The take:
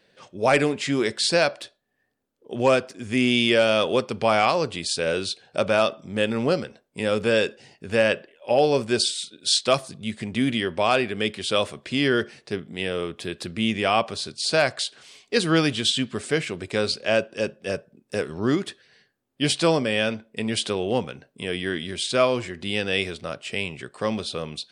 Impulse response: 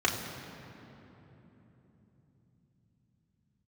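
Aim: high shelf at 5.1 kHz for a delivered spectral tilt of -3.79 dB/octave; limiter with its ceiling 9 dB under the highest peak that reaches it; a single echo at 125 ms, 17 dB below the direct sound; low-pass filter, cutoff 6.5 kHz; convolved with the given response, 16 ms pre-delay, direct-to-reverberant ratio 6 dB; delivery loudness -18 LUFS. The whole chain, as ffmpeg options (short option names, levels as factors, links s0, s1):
-filter_complex "[0:a]lowpass=6500,highshelf=f=5100:g=-8.5,alimiter=limit=0.158:level=0:latency=1,aecho=1:1:125:0.141,asplit=2[s0][s1];[1:a]atrim=start_sample=2205,adelay=16[s2];[s1][s2]afir=irnorm=-1:irlink=0,volume=0.126[s3];[s0][s3]amix=inputs=2:normalize=0,volume=2.99"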